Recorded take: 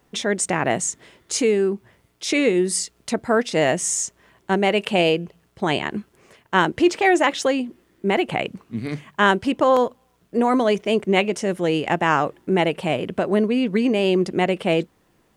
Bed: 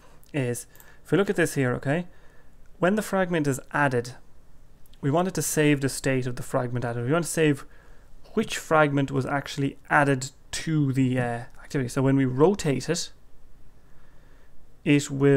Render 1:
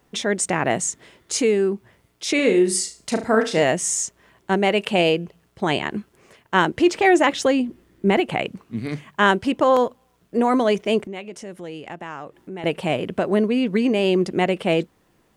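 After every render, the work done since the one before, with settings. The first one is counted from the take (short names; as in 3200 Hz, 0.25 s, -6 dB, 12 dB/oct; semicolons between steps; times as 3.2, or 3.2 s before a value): 2.35–3.63 flutter echo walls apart 6.2 m, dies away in 0.31 s; 6.96–8.2 low shelf 200 Hz +9.5 dB; 11.07–12.64 compressor 2:1, threshold -42 dBFS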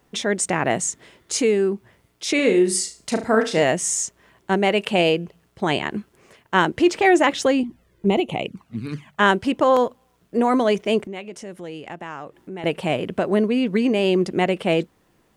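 7.63–9.2 envelope flanger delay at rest 2.3 ms, full sweep at -18.5 dBFS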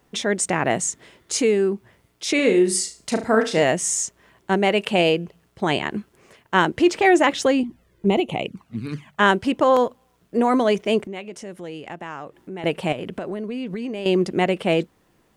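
12.92–14.06 compressor 10:1, threshold -25 dBFS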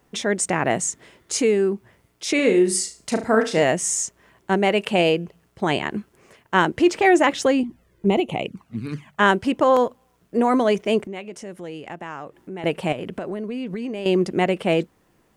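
bell 3700 Hz -2.5 dB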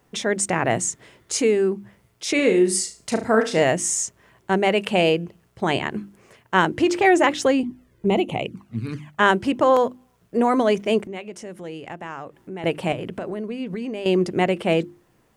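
bell 110 Hz +6.5 dB 0.47 oct; notches 50/100/150/200/250/300/350 Hz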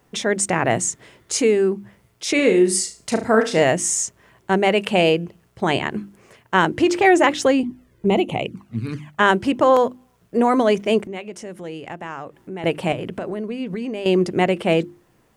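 gain +2 dB; limiter -3 dBFS, peak gain reduction 1.5 dB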